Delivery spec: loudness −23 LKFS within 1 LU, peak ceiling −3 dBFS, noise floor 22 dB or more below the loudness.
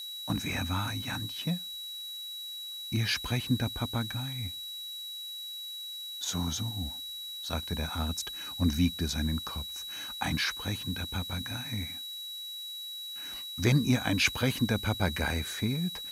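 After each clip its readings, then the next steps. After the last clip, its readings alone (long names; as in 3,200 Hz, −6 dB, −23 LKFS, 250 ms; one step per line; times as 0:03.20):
interfering tone 3,900 Hz; level of the tone −38 dBFS; background noise floor −41 dBFS; target noise floor −54 dBFS; integrated loudness −32.0 LKFS; sample peak −13.0 dBFS; target loudness −23.0 LKFS
→ notch filter 3,900 Hz, Q 30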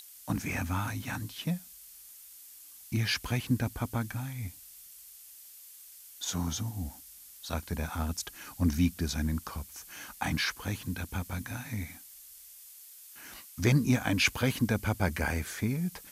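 interfering tone none found; background noise floor −52 dBFS; target noise floor −55 dBFS
→ broadband denoise 6 dB, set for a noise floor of −52 dBFS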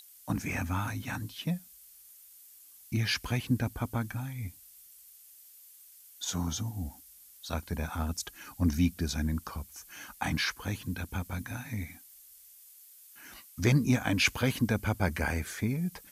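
background noise floor −55 dBFS; integrated loudness −32.5 LKFS; sample peak −13.0 dBFS; target loudness −23.0 LKFS
→ level +9.5 dB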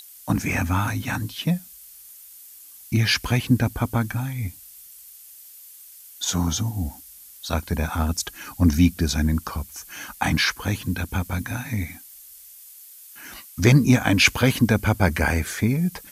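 integrated loudness −23.0 LKFS; sample peak −3.5 dBFS; background noise floor −46 dBFS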